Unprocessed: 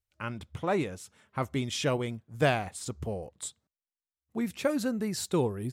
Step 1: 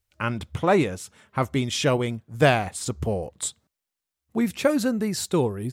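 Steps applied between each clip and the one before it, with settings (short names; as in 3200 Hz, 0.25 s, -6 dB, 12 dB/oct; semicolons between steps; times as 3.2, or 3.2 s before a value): vocal rider within 4 dB 2 s; gain +6.5 dB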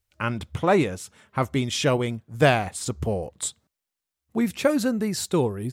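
nothing audible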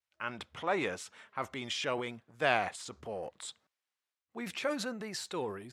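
transient shaper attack -3 dB, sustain +8 dB; vibrato 1 Hz 36 cents; band-pass 1700 Hz, Q 0.51; gain -6.5 dB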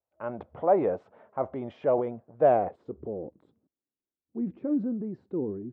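low-pass sweep 640 Hz -> 300 Hz, 2.37–3.32; gain +5.5 dB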